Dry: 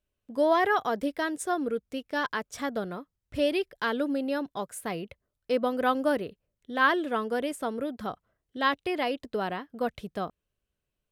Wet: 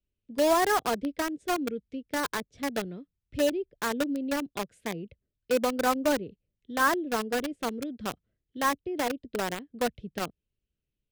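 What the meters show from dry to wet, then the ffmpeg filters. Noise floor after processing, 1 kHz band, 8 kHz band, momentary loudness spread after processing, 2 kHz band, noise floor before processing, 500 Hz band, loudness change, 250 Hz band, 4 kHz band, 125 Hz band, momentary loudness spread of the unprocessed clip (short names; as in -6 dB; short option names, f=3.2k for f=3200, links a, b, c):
under -85 dBFS, -0.5 dB, +7.0 dB, 12 LU, -1.5 dB, -84 dBFS, -0.5 dB, -0.5 dB, 0.0 dB, +1.0 dB, +0.5 dB, 14 LU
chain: -filter_complex "[0:a]lowpass=3.1k,acrossover=split=150|470|2100[a][b][c][d];[c]acrusher=bits=4:mix=0:aa=0.000001[e];[d]acompressor=threshold=-57dB:ratio=6[f];[a][b][e][f]amix=inputs=4:normalize=0"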